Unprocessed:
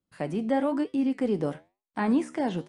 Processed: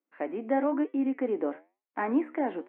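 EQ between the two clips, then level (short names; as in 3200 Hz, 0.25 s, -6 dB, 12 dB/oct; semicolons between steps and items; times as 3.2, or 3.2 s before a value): elliptic band-pass 280–2300 Hz, stop band 40 dB; 0.0 dB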